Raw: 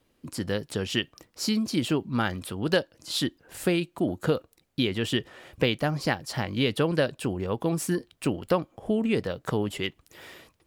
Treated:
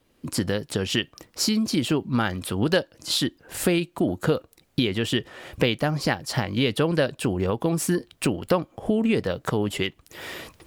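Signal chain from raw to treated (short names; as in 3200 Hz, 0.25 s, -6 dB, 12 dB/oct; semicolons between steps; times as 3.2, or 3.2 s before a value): recorder AGC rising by 19 dB/s; gain +2 dB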